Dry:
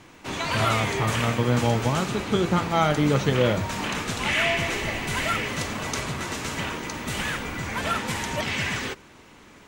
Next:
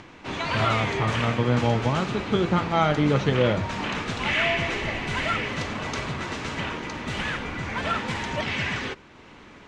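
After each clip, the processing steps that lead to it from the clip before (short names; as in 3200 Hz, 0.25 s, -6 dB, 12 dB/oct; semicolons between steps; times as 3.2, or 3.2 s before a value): upward compressor, threshold -41 dBFS; LPF 4400 Hz 12 dB/oct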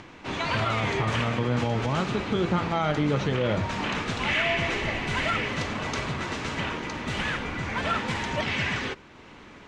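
limiter -16 dBFS, peak gain reduction 7 dB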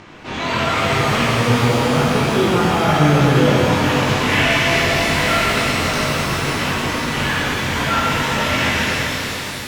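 chorus 1 Hz, delay 19.5 ms, depth 4.3 ms; shimmer reverb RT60 3.8 s, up +12 st, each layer -8 dB, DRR -5 dB; gain +6.5 dB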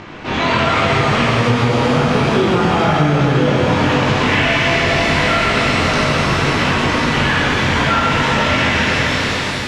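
compressor, threshold -18 dBFS, peak gain reduction 9 dB; air absorption 82 m; gain +7.5 dB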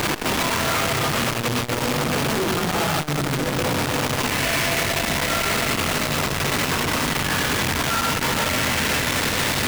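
infinite clipping; core saturation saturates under 120 Hz; gain -5 dB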